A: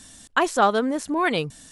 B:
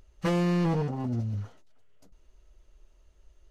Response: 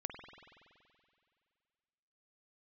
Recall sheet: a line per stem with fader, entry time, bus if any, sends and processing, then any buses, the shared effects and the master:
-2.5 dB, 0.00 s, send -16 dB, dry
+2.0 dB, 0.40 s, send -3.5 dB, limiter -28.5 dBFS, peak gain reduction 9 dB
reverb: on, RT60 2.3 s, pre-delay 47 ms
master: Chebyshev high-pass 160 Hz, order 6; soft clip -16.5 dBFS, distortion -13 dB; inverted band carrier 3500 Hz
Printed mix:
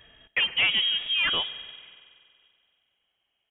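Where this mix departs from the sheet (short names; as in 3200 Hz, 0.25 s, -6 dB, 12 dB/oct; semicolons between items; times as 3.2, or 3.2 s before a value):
stem B +2.0 dB -> -9.5 dB; reverb return +6.5 dB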